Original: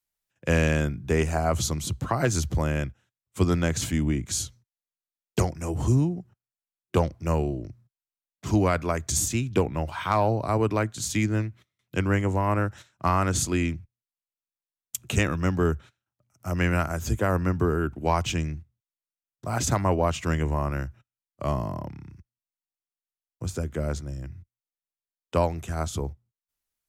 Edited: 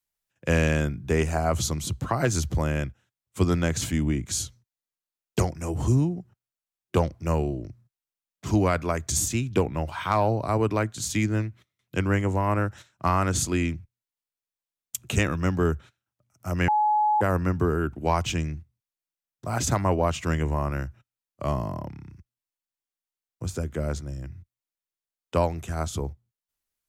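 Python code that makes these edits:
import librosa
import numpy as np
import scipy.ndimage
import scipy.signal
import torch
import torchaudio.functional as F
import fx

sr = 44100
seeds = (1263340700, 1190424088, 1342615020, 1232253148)

y = fx.edit(x, sr, fx.bleep(start_s=16.68, length_s=0.53, hz=847.0, db=-18.5), tone=tone)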